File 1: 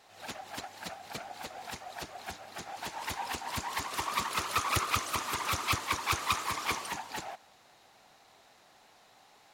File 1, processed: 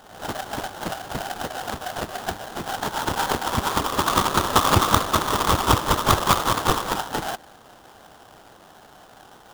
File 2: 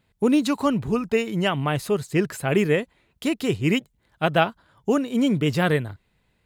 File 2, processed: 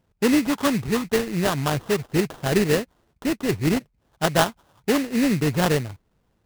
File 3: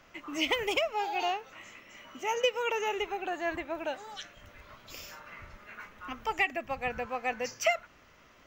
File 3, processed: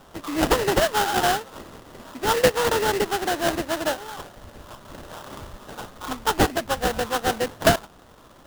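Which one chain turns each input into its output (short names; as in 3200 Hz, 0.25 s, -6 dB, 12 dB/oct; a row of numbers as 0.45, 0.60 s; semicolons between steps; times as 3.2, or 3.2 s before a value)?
median filter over 9 samples; sample-rate reducer 2300 Hz, jitter 20%; match loudness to -23 LUFS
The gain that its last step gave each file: +13.5, 0.0, +10.0 dB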